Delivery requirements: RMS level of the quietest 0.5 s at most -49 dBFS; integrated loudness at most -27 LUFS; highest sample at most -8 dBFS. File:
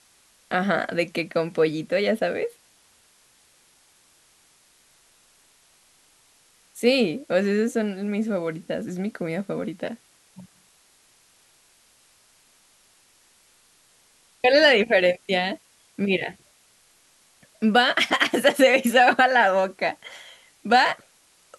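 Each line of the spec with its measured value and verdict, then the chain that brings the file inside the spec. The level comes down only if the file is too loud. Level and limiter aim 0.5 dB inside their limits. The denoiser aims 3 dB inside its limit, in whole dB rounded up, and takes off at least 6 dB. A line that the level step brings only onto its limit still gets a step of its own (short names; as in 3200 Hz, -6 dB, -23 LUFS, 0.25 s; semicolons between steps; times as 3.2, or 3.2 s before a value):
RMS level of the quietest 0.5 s -59 dBFS: OK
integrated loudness -22.0 LUFS: fail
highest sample -4.5 dBFS: fail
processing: gain -5.5 dB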